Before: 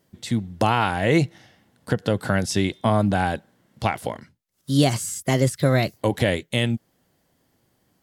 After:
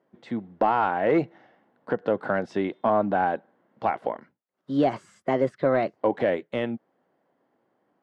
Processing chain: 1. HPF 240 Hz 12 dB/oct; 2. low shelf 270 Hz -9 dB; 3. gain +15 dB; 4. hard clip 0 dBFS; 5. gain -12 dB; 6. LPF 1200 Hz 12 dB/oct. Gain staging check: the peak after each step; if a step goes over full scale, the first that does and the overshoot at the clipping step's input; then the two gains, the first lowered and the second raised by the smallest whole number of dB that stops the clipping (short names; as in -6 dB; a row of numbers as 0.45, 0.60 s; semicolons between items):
-6.0, -7.5, +7.5, 0.0, -12.0, -11.5 dBFS; step 3, 7.5 dB; step 3 +7 dB, step 5 -4 dB